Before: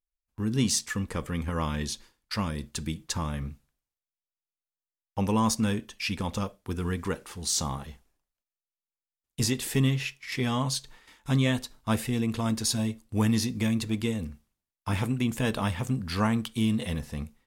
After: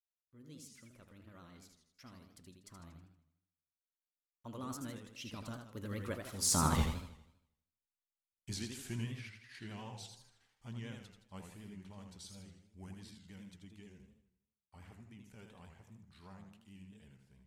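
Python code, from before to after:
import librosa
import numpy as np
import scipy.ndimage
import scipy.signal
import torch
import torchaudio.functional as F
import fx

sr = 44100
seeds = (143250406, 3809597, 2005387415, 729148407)

y = fx.doppler_pass(x, sr, speed_mps=48, closest_m=3.1, pass_at_s=6.83)
y = fx.vibrato(y, sr, rate_hz=9.4, depth_cents=59.0)
y = fx.echo_warbled(y, sr, ms=80, feedback_pct=49, rate_hz=2.8, cents=176, wet_db=-6.0)
y = F.gain(torch.from_numpy(y), 12.0).numpy()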